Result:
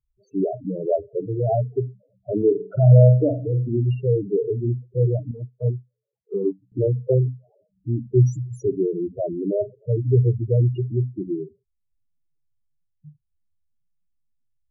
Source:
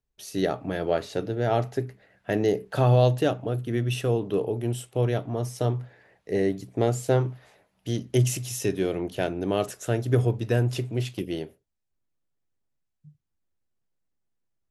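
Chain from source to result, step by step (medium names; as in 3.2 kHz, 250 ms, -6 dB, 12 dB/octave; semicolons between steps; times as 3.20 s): local Wiener filter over 25 samples; loudest bins only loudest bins 4; 2.37–3.75 s: flutter echo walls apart 8.2 m, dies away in 0.32 s; 5.31–6.72 s: upward expansion 2.5:1, over -39 dBFS; trim +6.5 dB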